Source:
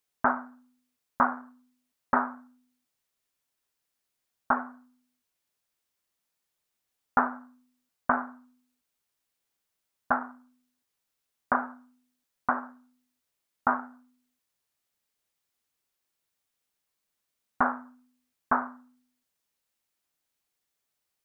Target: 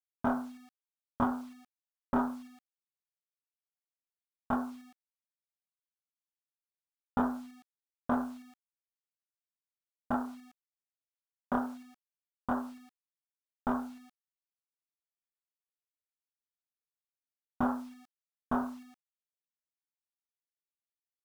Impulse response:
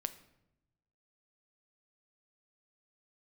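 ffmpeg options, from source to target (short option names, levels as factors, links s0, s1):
-filter_complex "[0:a]asoftclip=type=tanh:threshold=0.15,asplit=2[s0][s1];[s1]adelay=25,volume=0.708[s2];[s0][s2]amix=inputs=2:normalize=0,afftfilt=real='re*gte(hypot(re,im),0.00355)':imag='im*gte(hypot(re,im),0.00355)':win_size=1024:overlap=0.75,lowpass=f=1400:p=1,tiltshelf=f=780:g=9,bandreject=f=50:t=h:w=6,bandreject=f=100:t=h:w=6,bandreject=f=150:t=h:w=6,acrusher=bits=8:mix=0:aa=0.000001,volume=0.596"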